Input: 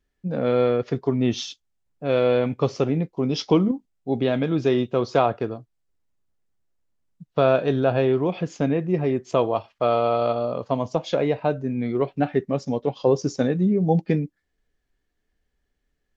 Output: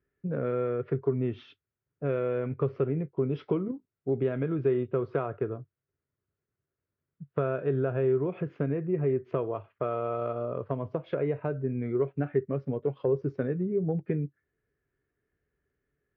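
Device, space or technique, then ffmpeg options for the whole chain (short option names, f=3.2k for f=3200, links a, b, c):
bass amplifier: -af "acompressor=threshold=-28dB:ratio=3,highpass=69,equalizer=f=98:t=q:w=4:g=8,equalizer=f=140:t=q:w=4:g=7,equalizer=f=210:t=q:w=4:g=-4,equalizer=f=400:t=q:w=4:g=8,equalizer=f=810:t=q:w=4:g=-8,equalizer=f=1.4k:t=q:w=4:g=5,lowpass=f=2.3k:w=0.5412,lowpass=f=2.3k:w=1.3066,volume=-2.5dB"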